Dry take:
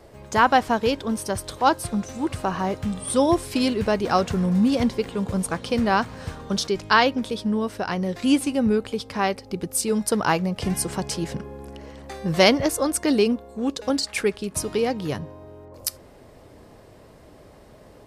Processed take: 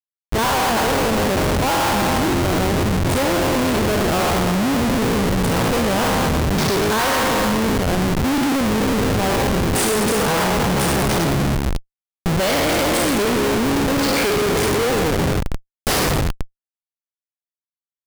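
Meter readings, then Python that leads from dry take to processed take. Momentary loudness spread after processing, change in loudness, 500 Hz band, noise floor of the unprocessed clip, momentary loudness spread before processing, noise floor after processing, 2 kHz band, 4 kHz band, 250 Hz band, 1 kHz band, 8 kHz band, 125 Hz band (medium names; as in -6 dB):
3 LU, +5.0 dB, +4.5 dB, -49 dBFS, 12 LU, under -85 dBFS, +6.0 dB, +6.0 dB, +4.0 dB, +4.0 dB, +6.0 dB, +9.5 dB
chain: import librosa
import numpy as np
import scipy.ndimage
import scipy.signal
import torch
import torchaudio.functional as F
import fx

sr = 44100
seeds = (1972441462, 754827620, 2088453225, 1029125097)

y = fx.spec_trails(x, sr, decay_s=2.92)
y = fx.schmitt(y, sr, flips_db=-19.5)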